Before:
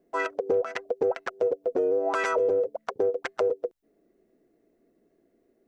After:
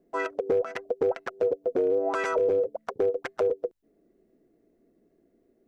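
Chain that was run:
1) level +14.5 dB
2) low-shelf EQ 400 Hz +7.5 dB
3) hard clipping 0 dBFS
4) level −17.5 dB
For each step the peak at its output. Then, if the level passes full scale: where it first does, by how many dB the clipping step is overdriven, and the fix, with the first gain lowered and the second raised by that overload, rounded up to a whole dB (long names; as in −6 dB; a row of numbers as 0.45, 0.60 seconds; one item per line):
+2.5, +4.5, 0.0, −17.5 dBFS
step 1, 4.5 dB
step 1 +9.5 dB, step 4 −12.5 dB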